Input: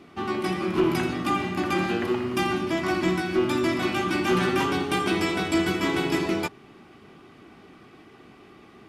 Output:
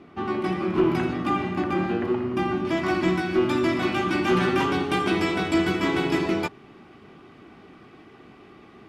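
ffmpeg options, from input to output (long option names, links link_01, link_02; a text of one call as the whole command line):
ffmpeg -i in.wav -af "asetnsamples=nb_out_samples=441:pad=0,asendcmd='1.64 lowpass f 1100;2.65 lowpass f 4000',lowpass=frequency=1900:poles=1,volume=1.5dB" out.wav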